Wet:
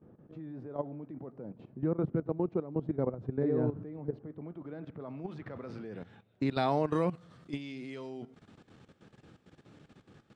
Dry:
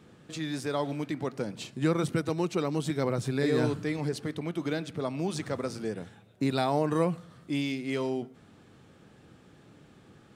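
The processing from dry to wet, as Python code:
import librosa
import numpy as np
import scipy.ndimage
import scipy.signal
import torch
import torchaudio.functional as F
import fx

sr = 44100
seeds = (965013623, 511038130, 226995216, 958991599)

y = fx.level_steps(x, sr, step_db=14)
y = fx.dynamic_eq(y, sr, hz=7400.0, q=0.94, threshold_db=-58.0, ratio=4.0, max_db=-6)
y = fx.filter_sweep_lowpass(y, sr, from_hz=740.0, to_hz=7000.0, start_s=4.19, end_s=7.0, q=0.75)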